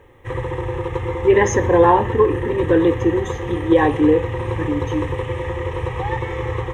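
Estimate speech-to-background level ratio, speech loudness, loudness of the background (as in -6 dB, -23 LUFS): 7.0 dB, -18.0 LUFS, -25.0 LUFS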